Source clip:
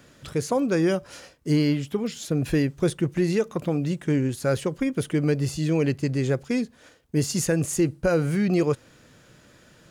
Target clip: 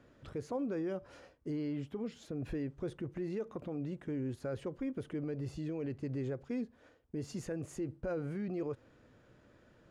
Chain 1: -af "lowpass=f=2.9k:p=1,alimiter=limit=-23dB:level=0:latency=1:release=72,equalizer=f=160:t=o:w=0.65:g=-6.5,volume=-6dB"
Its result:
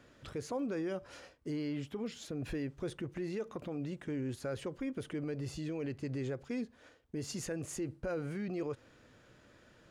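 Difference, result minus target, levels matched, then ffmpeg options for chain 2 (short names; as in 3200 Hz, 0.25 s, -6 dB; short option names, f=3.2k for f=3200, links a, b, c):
4000 Hz band +7.5 dB
-af "lowpass=f=950:p=1,alimiter=limit=-23dB:level=0:latency=1:release=72,equalizer=f=160:t=o:w=0.65:g=-6.5,volume=-6dB"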